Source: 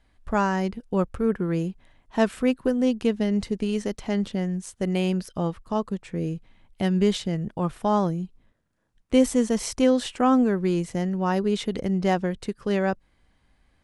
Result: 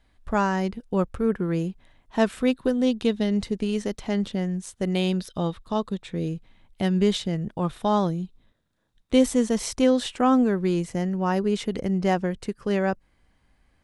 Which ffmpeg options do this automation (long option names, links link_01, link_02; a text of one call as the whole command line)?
ffmpeg -i in.wav -af "asetnsamples=nb_out_samples=441:pad=0,asendcmd='2.43 equalizer g 13.5;3.4 equalizer g 4;4.95 equalizer g 14.5;6.28 equalizer g 4;7.65 equalizer g 11.5;9.23 equalizer g 3.5;10.87 equalizer g -4',equalizer=frequency=3700:width_type=o:width=0.26:gain=3" out.wav